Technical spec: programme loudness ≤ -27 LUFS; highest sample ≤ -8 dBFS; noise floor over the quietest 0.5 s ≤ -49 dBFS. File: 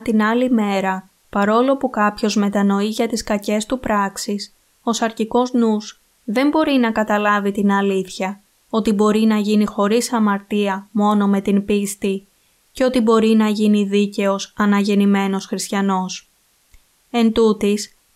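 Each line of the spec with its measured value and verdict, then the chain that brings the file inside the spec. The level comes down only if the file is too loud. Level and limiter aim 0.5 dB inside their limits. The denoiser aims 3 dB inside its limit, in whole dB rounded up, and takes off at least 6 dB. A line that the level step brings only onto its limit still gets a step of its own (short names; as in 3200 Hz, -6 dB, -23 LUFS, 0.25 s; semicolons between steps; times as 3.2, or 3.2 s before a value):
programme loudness -18.0 LUFS: fail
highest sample -5.0 dBFS: fail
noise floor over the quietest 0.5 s -59 dBFS: OK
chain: gain -9.5 dB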